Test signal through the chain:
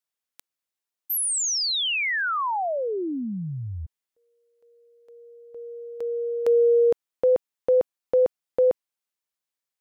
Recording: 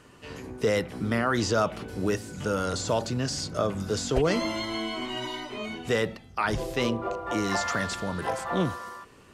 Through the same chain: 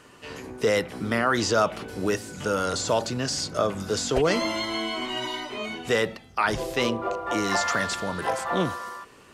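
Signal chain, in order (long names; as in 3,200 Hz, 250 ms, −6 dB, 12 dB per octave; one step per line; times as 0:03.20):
low-shelf EQ 240 Hz −8 dB
level +4 dB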